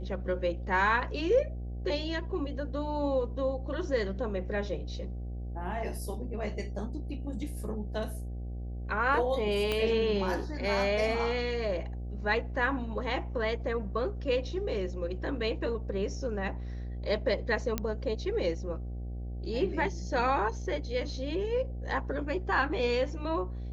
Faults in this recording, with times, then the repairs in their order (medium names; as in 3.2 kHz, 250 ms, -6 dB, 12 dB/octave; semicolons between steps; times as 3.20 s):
buzz 60 Hz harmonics 13 -37 dBFS
9.72 s: pop -16 dBFS
17.78 s: pop -15 dBFS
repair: de-click; de-hum 60 Hz, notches 13